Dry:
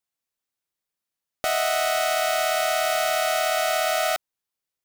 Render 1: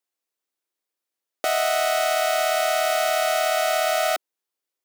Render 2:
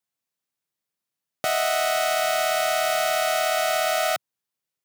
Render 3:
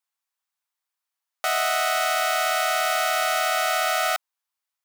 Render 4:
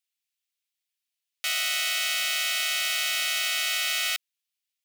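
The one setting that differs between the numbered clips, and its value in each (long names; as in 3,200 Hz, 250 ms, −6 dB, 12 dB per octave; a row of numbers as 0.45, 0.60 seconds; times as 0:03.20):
high-pass with resonance, frequency: 340, 130, 940, 2,600 Hertz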